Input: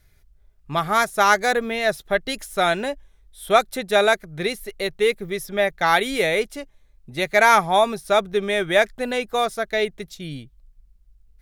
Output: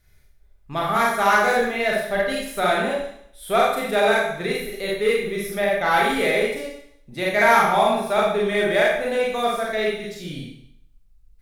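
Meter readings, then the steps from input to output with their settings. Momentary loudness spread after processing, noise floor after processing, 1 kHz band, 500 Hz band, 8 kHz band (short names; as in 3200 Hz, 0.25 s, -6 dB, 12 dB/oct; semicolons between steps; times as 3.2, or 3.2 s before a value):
14 LU, -54 dBFS, 0.0 dB, +0.5 dB, -2.5 dB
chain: Schroeder reverb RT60 0.68 s, combs from 30 ms, DRR -4.5 dB; dynamic EQ 5600 Hz, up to -7 dB, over -37 dBFS, Q 1.1; in parallel at -8.5 dB: hard clip -14 dBFS, distortion -8 dB; on the sum: gain -7 dB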